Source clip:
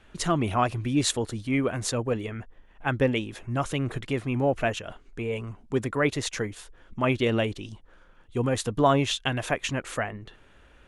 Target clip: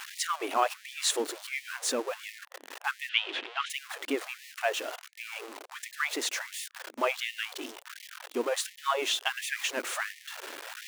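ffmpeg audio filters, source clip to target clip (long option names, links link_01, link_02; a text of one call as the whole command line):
ffmpeg -i in.wav -filter_complex "[0:a]aeval=exprs='val(0)+0.5*0.0282*sgn(val(0))':channel_layout=same,asettb=1/sr,asplit=3[link_01][link_02][link_03];[link_01]atrim=end=3.094[link_04];[link_02]atrim=start=3.09:end=3.7,asetpts=PTS-STARTPTS,afade=type=in:duration=0.004:curve=qsin,afade=type=out:start_time=0.606:duration=0.004:curve=qsin,lowpass=frequency=3200:width_type=q:width=3.1[link_05];[link_03]atrim=start=3.696[link_06];[link_04][link_05]acrossfade=duration=0.004:curve1=hsin:curve2=qsin[link_07];[link_07][link_06]acrossfade=duration=0.004:curve1=qsin:curve2=hsin,afftfilt=real='re*gte(b*sr/1024,240*pow(1800/240,0.5+0.5*sin(2*PI*1.4*pts/sr)))':imag='im*gte(b*sr/1024,240*pow(1800/240,0.5+0.5*sin(2*PI*1.4*pts/sr)))':win_size=1024:overlap=0.75,volume=-2.5dB" out.wav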